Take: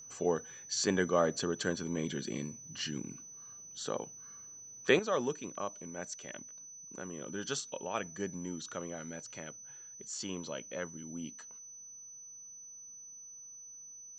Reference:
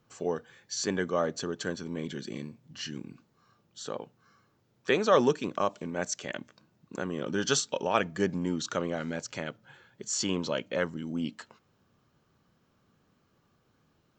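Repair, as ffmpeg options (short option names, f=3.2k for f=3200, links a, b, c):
-af "bandreject=f=6k:w=30,asetnsamples=n=441:p=0,asendcmd='4.99 volume volume 10dB',volume=0dB"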